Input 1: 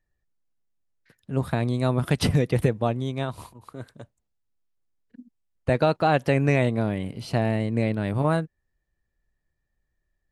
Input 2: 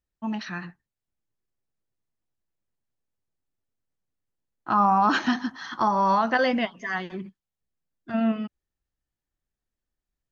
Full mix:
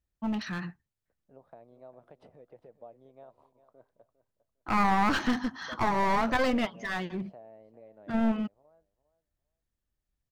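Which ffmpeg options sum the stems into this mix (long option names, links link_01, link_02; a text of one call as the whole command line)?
ffmpeg -i stem1.wav -i stem2.wav -filter_complex "[0:a]acompressor=threshold=-27dB:ratio=6,bandpass=frequency=620:width_type=q:width=2.6:csg=0,volume=-12dB,asplit=2[link_01][link_02];[link_02]volume=-15dB[link_03];[1:a]aeval=exprs='clip(val(0),-1,0.0299)':channel_layout=same,equalizer=frequency=74:width_type=o:width=2.6:gain=7.5,volume=-2dB[link_04];[link_03]aecho=0:1:403|806|1209:1|0.2|0.04[link_05];[link_01][link_04][link_05]amix=inputs=3:normalize=0" out.wav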